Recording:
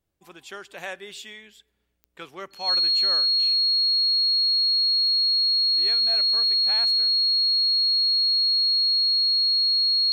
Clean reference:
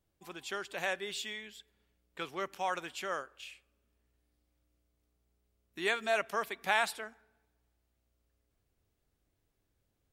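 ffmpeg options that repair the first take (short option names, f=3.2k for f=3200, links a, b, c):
-af "adeclick=t=4,bandreject=f=4.3k:w=30,asetnsamples=n=441:p=0,asendcmd='5 volume volume 8.5dB',volume=0dB"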